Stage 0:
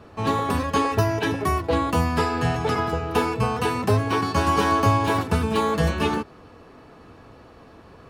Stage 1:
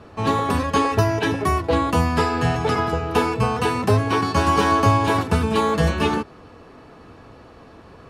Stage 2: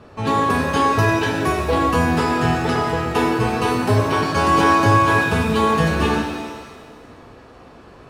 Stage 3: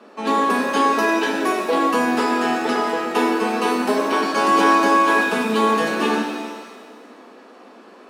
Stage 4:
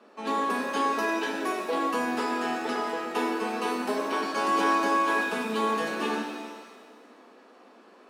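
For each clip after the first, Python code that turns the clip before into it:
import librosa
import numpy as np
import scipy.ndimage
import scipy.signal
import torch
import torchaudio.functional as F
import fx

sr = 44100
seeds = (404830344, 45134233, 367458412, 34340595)

y1 = scipy.signal.sosfilt(scipy.signal.butter(2, 12000.0, 'lowpass', fs=sr, output='sos'), x)
y1 = y1 * librosa.db_to_amplitude(2.5)
y2 = fx.rev_shimmer(y1, sr, seeds[0], rt60_s=1.5, semitones=7, shimmer_db=-8, drr_db=1.5)
y2 = y2 * librosa.db_to_amplitude(-1.0)
y3 = scipy.signal.sosfilt(scipy.signal.butter(12, 200.0, 'highpass', fs=sr, output='sos'), y2)
y4 = fx.low_shelf(y3, sr, hz=230.0, db=-3.5)
y4 = y4 * librosa.db_to_amplitude(-8.5)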